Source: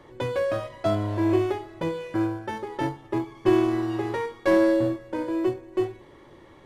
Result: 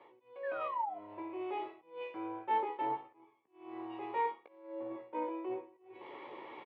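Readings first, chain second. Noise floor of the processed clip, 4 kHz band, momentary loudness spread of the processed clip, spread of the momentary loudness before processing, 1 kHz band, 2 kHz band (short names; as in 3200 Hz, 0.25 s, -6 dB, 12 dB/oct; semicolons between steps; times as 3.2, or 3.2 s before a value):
-69 dBFS, -16.5 dB, 16 LU, 10 LU, -3.0 dB, -13.5 dB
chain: bell 660 Hz +5 dB 0.63 oct; reverse; compressor 16:1, threshold -38 dBFS, peak gain reduction 25 dB; reverse; limiter -37.5 dBFS, peak gain reduction 7.5 dB; auto swell 0.293 s; painted sound fall, 0.43–0.99, 660–1800 Hz -48 dBFS; speaker cabinet 390–3000 Hz, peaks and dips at 440 Hz +3 dB, 620 Hz -6 dB, 930 Hz +7 dB, 1600 Hz -9 dB, 2400 Hz +7 dB; doubler 16 ms -8 dB; three-band expander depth 100%; gain +6.5 dB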